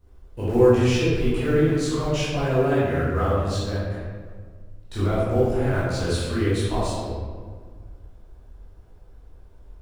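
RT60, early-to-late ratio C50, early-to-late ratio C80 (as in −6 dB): 1.7 s, −3.0 dB, 0.0 dB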